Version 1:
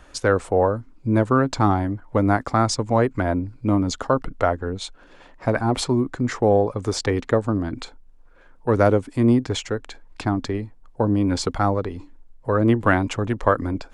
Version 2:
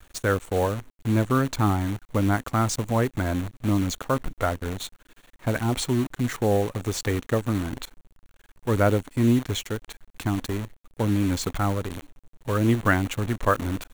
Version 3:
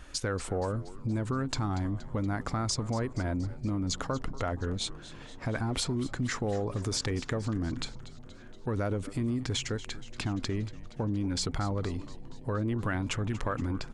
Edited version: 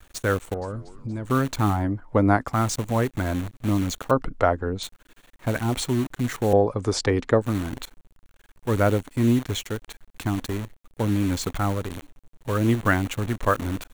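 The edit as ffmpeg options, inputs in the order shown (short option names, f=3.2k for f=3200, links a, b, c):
-filter_complex "[0:a]asplit=3[a][b][c];[1:a]asplit=5[d][e][f][g][h];[d]atrim=end=0.542[i];[2:a]atrim=start=0.538:end=1.252[j];[e]atrim=start=1.248:end=1.85[k];[a]atrim=start=1.69:end=2.58[l];[f]atrim=start=2.42:end=4.112[m];[b]atrim=start=4.108:end=4.832[n];[g]atrim=start=4.828:end=6.532[o];[c]atrim=start=6.528:end=7.422[p];[h]atrim=start=7.418[q];[i][j]acrossfade=d=0.004:c1=hsin:c2=hsin[r];[r][k]acrossfade=d=0.004:c1=hsin:c2=hsin[s];[s][l]acrossfade=d=0.16:c1=tri:c2=tri[t];[t][m]acrossfade=d=0.16:c1=tri:c2=tri[u];[u][n]acrossfade=d=0.004:c1=hsin:c2=hsin[v];[v][o]acrossfade=d=0.004:c1=hsin:c2=hsin[w];[w][p]acrossfade=d=0.004:c1=hsin:c2=hsin[x];[x][q]acrossfade=d=0.004:c1=hsin:c2=hsin"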